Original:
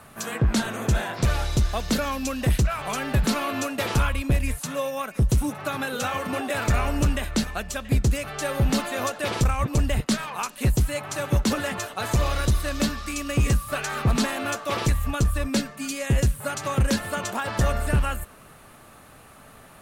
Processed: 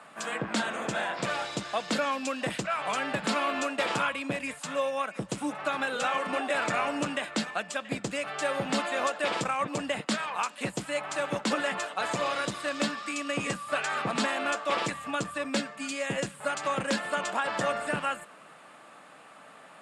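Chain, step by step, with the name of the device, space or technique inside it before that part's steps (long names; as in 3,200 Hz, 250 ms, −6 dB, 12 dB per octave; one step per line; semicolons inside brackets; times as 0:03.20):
television speaker (loudspeaker in its box 210–7,900 Hz, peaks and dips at 240 Hz −8 dB, 390 Hz −8 dB, 4,200 Hz −4 dB, 6,000 Hz −9 dB)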